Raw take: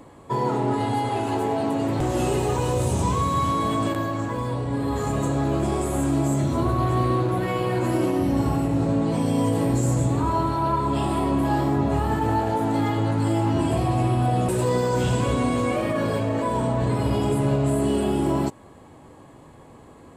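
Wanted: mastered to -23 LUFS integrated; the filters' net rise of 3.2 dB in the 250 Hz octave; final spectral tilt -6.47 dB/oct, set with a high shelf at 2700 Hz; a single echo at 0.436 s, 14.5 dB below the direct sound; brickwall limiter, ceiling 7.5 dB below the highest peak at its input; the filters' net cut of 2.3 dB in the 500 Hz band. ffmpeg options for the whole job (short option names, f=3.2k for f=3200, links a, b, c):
-af "equalizer=f=250:t=o:g=5.5,equalizer=f=500:t=o:g=-5.5,highshelf=f=2.7k:g=4.5,alimiter=limit=-16.5dB:level=0:latency=1,aecho=1:1:436:0.188,volume=2dB"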